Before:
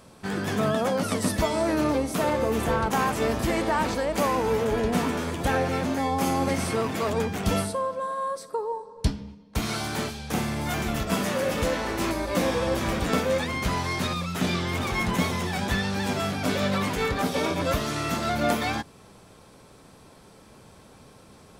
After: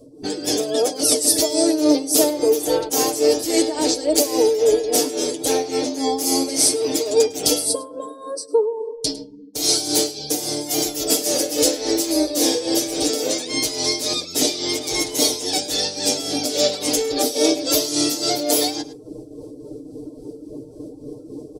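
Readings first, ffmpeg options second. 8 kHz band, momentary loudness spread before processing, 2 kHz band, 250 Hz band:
+17.0 dB, 5 LU, −4.0 dB, +4.5 dB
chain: -filter_complex "[0:a]equalizer=frequency=180:width=5.8:gain=-14,afftdn=noise_reduction=25:noise_floor=-47,acrossover=split=530[link_01][link_02];[link_01]acompressor=threshold=-44dB:ratio=8[link_03];[link_03][link_02]amix=inputs=2:normalize=0,aecho=1:1:6.6:0.84,tremolo=f=3.6:d=0.69,aecho=1:1:104:0.0841,areverse,acompressor=mode=upward:threshold=-43dB:ratio=2.5,areverse,firequalizer=gain_entry='entry(180,0);entry(290,15);entry(1100,-18);entry(4800,12)':delay=0.05:min_phase=1,volume=7.5dB"

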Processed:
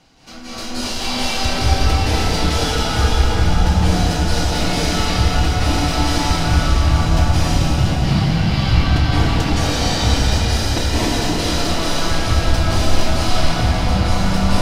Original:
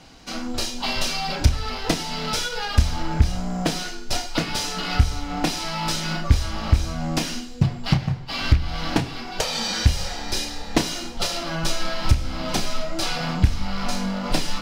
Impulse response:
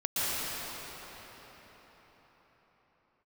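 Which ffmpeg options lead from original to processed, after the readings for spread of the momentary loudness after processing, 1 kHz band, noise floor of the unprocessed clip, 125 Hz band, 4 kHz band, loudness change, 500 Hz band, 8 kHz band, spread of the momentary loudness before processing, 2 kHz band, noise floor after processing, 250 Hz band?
3 LU, +7.5 dB, −34 dBFS, +7.5 dB, +5.5 dB, +7.0 dB, +8.0 dB, +5.0 dB, 5 LU, +6.5 dB, −24 dBFS, +7.0 dB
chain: -filter_complex "[1:a]atrim=start_sample=2205,asetrate=30429,aresample=44100[link_01];[0:a][link_01]afir=irnorm=-1:irlink=0,volume=-7dB"

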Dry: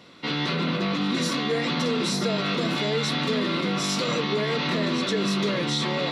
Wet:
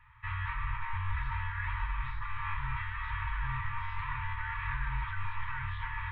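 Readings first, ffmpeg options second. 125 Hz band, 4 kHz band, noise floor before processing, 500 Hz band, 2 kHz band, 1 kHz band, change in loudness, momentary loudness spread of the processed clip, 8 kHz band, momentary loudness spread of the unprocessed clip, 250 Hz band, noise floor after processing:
−6.5 dB, −26.0 dB, −28 dBFS, below −40 dB, −6.5 dB, −6.5 dB, −12.0 dB, 2 LU, below −40 dB, 1 LU, below −30 dB, −39 dBFS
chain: -af "highpass=frequency=170:width_type=q:width=0.5412,highpass=frequency=170:width_type=q:width=1.307,lowpass=frequency=2400:width_type=q:width=0.5176,lowpass=frequency=2400:width_type=q:width=0.7071,lowpass=frequency=2400:width_type=q:width=1.932,afreqshift=-200,afftfilt=real='re*(1-between(b*sr/4096,130,870))':imag='im*(1-between(b*sr/4096,130,870))':win_size=4096:overlap=0.75,volume=-5dB"

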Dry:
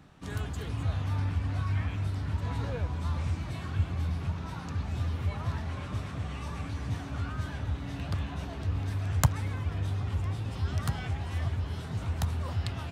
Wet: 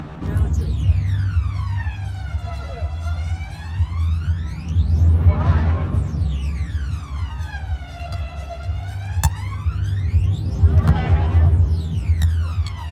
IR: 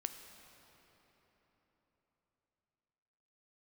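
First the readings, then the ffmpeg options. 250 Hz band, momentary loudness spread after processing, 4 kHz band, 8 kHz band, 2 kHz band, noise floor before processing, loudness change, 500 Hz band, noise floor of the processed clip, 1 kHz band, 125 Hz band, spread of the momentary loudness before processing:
+9.0 dB, 12 LU, +5.5 dB, +6.0 dB, +6.5 dB, −39 dBFS, +12.0 dB, +8.0 dB, −32 dBFS, +7.5 dB, +12.0 dB, 5 LU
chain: -filter_complex "[0:a]asplit=2[link_01][link_02];[link_02]adelay=13,volume=-3dB[link_03];[link_01][link_03]amix=inputs=2:normalize=0,acompressor=mode=upward:threshold=-37dB:ratio=2.5,aphaser=in_gain=1:out_gain=1:delay=1.5:decay=0.8:speed=0.18:type=sinusoidal"

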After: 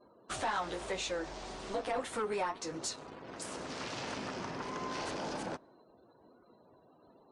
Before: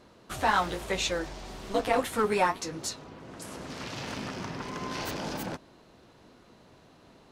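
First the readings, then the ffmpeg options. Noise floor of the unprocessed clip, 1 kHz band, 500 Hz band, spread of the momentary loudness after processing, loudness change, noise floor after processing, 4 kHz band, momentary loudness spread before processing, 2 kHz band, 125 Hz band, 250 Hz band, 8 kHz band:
−57 dBFS, −7.5 dB, −6.5 dB, 8 LU, −7.5 dB, −64 dBFS, −6.0 dB, 16 LU, −7.5 dB, −8.5 dB, −7.0 dB, −4.5 dB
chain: -filter_complex "[0:a]asplit=2[link_01][link_02];[link_02]acrusher=bits=6:mix=0:aa=0.000001,volume=-9dB[link_03];[link_01][link_03]amix=inputs=2:normalize=0,acompressor=threshold=-30dB:ratio=2,bass=frequency=250:gain=-8,treble=frequency=4000:gain=2,acontrast=83,asoftclip=type=tanh:threshold=-18dB,aresample=22050,aresample=44100,afftdn=noise_reduction=36:noise_floor=-50,adynamicequalizer=threshold=0.0112:dfrequency=1600:dqfactor=0.7:tfrequency=1600:tqfactor=0.7:attack=5:release=100:ratio=0.375:range=2.5:mode=cutabove:tftype=highshelf,volume=-9dB"

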